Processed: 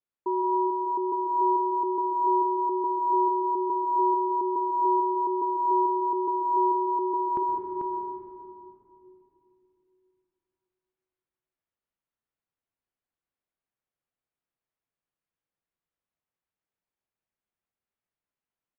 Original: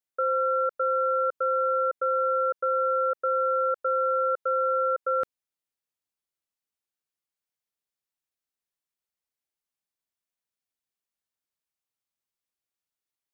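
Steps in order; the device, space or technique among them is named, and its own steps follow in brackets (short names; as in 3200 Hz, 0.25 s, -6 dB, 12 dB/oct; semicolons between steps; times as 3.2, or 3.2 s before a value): slowed and reverbed (varispeed -29%; reverb RT60 2.9 s, pre-delay 0.112 s, DRR 2 dB); air absorption 480 m; echo 0.441 s -5 dB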